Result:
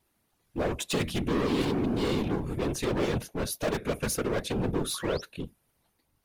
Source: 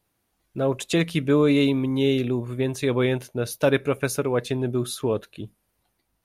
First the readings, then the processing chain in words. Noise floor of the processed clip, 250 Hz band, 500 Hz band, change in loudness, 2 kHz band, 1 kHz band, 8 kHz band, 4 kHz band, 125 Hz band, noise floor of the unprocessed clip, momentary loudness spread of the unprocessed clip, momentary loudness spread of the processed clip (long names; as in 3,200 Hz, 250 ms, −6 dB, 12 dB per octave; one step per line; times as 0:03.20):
−74 dBFS, −6.5 dB, −7.5 dB, −6.0 dB, −6.0 dB, −1.5 dB, −0.5 dB, −3.5 dB, −6.0 dB, −74 dBFS, 10 LU, 6 LU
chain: gain into a clipping stage and back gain 26 dB
sound drawn into the spectrogram rise, 0:04.94–0:05.22, 1,000–6,100 Hz −44 dBFS
random phases in short frames